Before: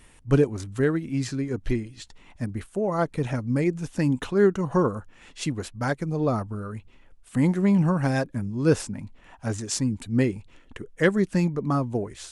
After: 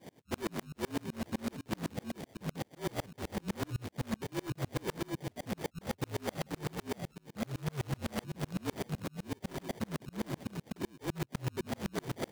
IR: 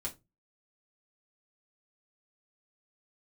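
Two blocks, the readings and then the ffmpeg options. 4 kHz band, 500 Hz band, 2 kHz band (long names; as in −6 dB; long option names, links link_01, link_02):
−5.5 dB, −15.0 dB, −12.0 dB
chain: -filter_complex "[0:a]afftfilt=real='real(if(lt(b,736),b+184*(1-2*mod(floor(b/184),2)),b),0)':imag='imag(if(lt(b,736),b+184*(1-2*mod(floor(b/184),2)),b),0)':win_size=2048:overlap=0.75,acrossover=split=190|830|3800[link_01][link_02][link_03][link_04];[link_01]acompressor=threshold=-60dB:ratio=4[link_05];[link_02]acompressor=threshold=-56dB:ratio=4[link_06];[link_03]acompressor=threshold=-36dB:ratio=4[link_07];[link_04]acompressor=threshold=-22dB:ratio=4[link_08];[link_05][link_06][link_07][link_08]amix=inputs=4:normalize=0,aecho=1:1:650:0.112,areverse,acompressor=threshold=-38dB:ratio=12,areverse,acrusher=samples=33:mix=1:aa=0.000001,equalizer=frequency=1200:width=1.8:gain=-6.5,asplit=2[link_09][link_10];[link_10]aeval=exprs='(mod(79.4*val(0)+1,2)-1)/79.4':channel_layout=same,volume=-3dB[link_11];[link_09][link_11]amix=inputs=2:normalize=0,highpass=frequency=110:width=0.5412,highpass=frequency=110:width=1.3066,asoftclip=type=tanh:threshold=-39dB,aeval=exprs='val(0)*pow(10,-36*if(lt(mod(-7.9*n/s,1),2*abs(-7.9)/1000),1-mod(-7.9*n/s,1)/(2*abs(-7.9)/1000),(mod(-7.9*n/s,1)-2*abs(-7.9)/1000)/(1-2*abs(-7.9)/1000))/20)':channel_layout=same,volume=15dB"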